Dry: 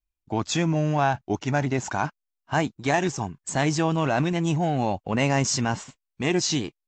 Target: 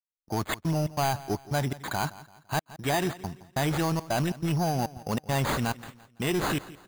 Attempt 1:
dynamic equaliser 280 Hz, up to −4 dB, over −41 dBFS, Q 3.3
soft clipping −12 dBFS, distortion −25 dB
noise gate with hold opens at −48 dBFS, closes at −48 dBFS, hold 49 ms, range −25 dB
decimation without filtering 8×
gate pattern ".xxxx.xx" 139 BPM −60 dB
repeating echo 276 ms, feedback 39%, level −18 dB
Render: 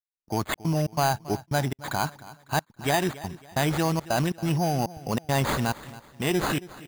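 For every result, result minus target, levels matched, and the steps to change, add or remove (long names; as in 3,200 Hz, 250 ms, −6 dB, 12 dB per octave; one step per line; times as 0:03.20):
echo 107 ms late; soft clipping: distortion −12 dB
change: repeating echo 169 ms, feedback 39%, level −18 dB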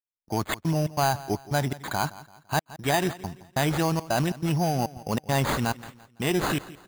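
soft clipping: distortion −12 dB
change: soft clipping −20.5 dBFS, distortion −13 dB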